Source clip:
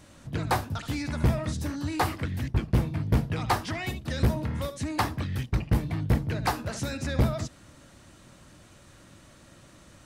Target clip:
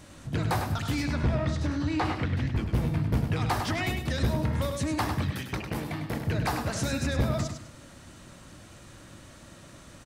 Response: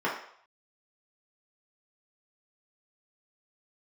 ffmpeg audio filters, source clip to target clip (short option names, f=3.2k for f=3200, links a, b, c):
-filter_complex "[0:a]asettb=1/sr,asplit=3[a][b][c];[a]atrim=end=5.304[d];[b]atrim=start=5.3:end=6.27,asetpts=PTS-STARTPTS,afade=t=in:d=0.004:c=qsin,afade=t=out:st=0.966:d=0.004:c=qsin,highpass=f=380:p=1[e];[c]atrim=start=6.266[f];[d][e]acrossfade=d=0.004:c1=hsin:c2=qsin[g];[g][f]acrossfade=d=0.004:c1=qsin:c2=hsin,alimiter=limit=-23dB:level=0:latency=1:release=53,asettb=1/sr,asplit=3[h][i][j];[h]atrim=end=1.054[k];[i]atrim=start=1.05:end=2.55,asetpts=PTS-STARTPTS,afade=t=in:d=0.004:c=qsin,afade=t=out:st=1.496:d=0.004:c=qsin,lowpass=4.6k[l];[j]atrim=start=2.546[m];[k][l]acrossfade=d=0.004:c1=hsin:c2=qsin[n];[n][m]acrossfade=d=0.004:c1=qsin:c2=hsin,aecho=1:1:101|202|303:0.447|0.125|0.035,volume=3dB"